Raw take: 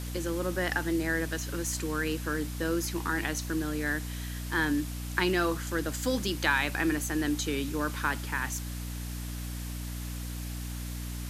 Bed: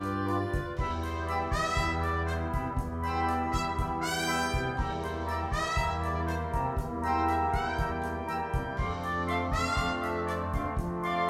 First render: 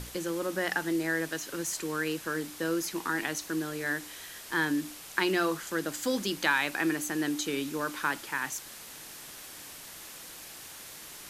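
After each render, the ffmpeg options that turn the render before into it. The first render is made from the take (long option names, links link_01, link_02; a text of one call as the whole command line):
ffmpeg -i in.wav -af "bandreject=frequency=60:width_type=h:width=6,bandreject=frequency=120:width_type=h:width=6,bandreject=frequency=180:width_type=h:width=6,bandreject=frequency=240:width_type=h:width=6,bandreject=frequency=300:width_type=h:width=6" out.wav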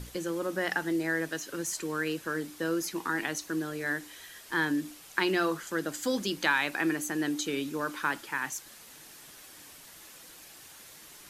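ffmpeg -i in.wav -af "afftdn=noise_reduction=6:noise_floor=-46" out.wav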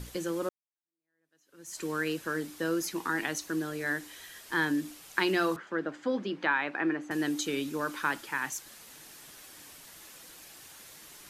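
ffmpeg -i in.wav -filter_complex "[0:a]asettb=1/sr,asplit=3[link_01][link_02][link_03];[link_01]atrim=end=5.564[link_04];[link_02]atrim=start=5.56:end=7.11,asetpts=PTS-STARTPTS,afade=type=in:duration=0.004:curve=qsin,afade=type=out:start_time=1.546:duration=0.004:curve=qsin,highpass=180,lowpass=2000[link_05];[link_03]atrim=start=7.106[link_06];[link_04][link_05]acrossfade=duration=0.004:curve1=hsin:curve2=qsin[link_07];[link_07][link_06]acrossfade=duration=0.004:curve1=qsin:curve2=hsin,asplit=2[link_08][link_09];[link_08]atrim=end=0.49,asetpts=PTS-STARTPTS,afade=type=out:start_time=0.486:duration=0.004:curve=hsin[link_10];[link_09]atrim=start=0.49,asetpts=PTS-STARTPTS,afade=type=in:duration=1.34:curve=exp[link_11];[link_10][link_11]concat=n=2:v=0:a=1" out.wav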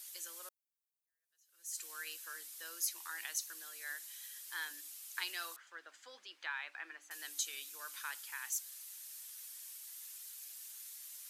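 ffmpeg -i in.wav -af "highpass=580,aderivative" out.wav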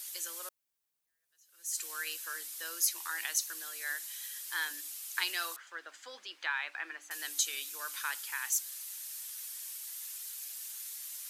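ffmpeg -i in.wav -af "volume=7dB" out.wav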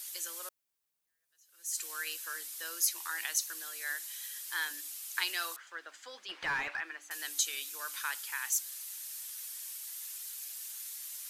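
ffmpeg -i in.wav -filter_complex "[0:a]asplit=3[link_01][link_02][link_03];[link_01]afade=type=out:start_time=6.28:duration=0.02[link_04];[link_02]asplit=2[link_05][link_06];[link_06]highpass=frequency=720:poles=1,volume=23dB,asoftclip=type=tanh:threshold=-21.5dB[link_07];[link_05][link_07]amix=inputs=2:normalize=0,lowpass=frequency=1100:poles=1,volume=-6dB,afade=type=in:start_time=6.28:duration=0.02,afade=type=out:start_time=6.79:duration=0.02[link_08];[link_03]afade=type=in:start_time=6.79:duration=0.02[link_09];[link_04][link_08][link_09]amix=inputs=3:normalize=0" out.wav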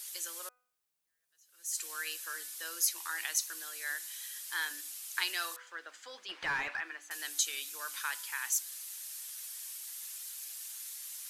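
ffmpeg -i in.wav -af "equalizer=frequency=14000:width=7.7:gain=-8.5,bandreject=frequency=248.6:width_type=h:width=4,bandreject=frequency=497.2:width_type=h:width=4,bandreject=frequency=745.8:width_type=h:width=4,bandreject=frequency=994.4:width_type=h:width=4,bandreject=frequency=1243:width_type=h:width=4,bandreject=frequency=1491.6:width_type=h:width=4,bandreject=frequency=1740.2:width_type=h:width=4,bandreject=frequency=1988.8:width_type=h:width=4,bandreject=frequency=2237.4:width_type=h:width=4,bandreject=frequency=2486:width_type=h:width=4" out.wav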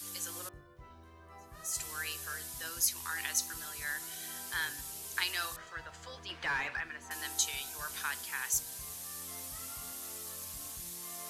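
ffmpeg -i in.wav -i bed.wav -filter_complex "[1:a]volume=-22.5dB[link_01];[0:a][link_01]amix=inputs=2:normalize=0" out.wav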